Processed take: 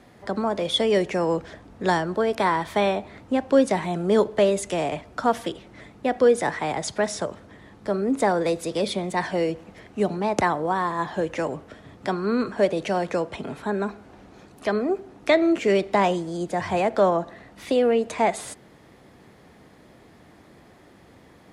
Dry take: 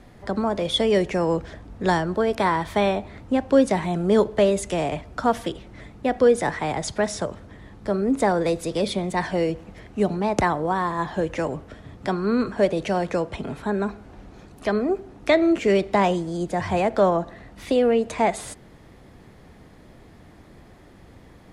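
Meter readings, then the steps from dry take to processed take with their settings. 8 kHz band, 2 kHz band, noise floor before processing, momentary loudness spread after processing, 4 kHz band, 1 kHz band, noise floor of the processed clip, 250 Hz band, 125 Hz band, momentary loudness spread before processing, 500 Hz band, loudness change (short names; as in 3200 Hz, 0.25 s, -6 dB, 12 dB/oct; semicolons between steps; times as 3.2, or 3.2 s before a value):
0.0 dB, 0.0 dB, -49 dBFS, 11 LU, 0.0 dB, 0.0 dB, -52 dBFS, -2.0 dB, -3.5 dB, 11 LU, -0.5 dB, -1.0 dB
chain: HPF 190 Hz 6 dB/oct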